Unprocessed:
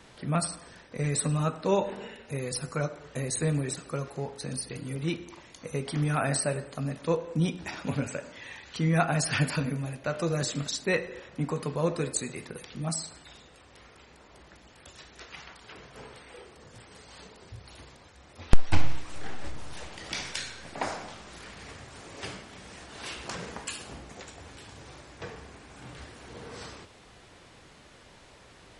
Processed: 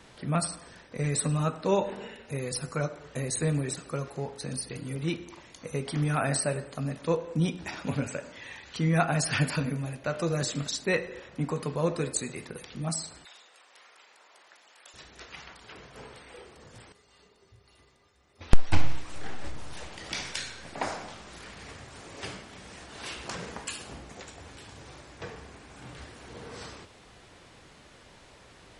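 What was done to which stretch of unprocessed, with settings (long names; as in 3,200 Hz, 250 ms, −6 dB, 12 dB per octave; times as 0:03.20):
0:13.25–0:14.94: high-pass filter 740 Hz
0:16.92–0:18.41: tuned comb filter 400 Hz, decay 0.17 s, harmonics odd, mix 80%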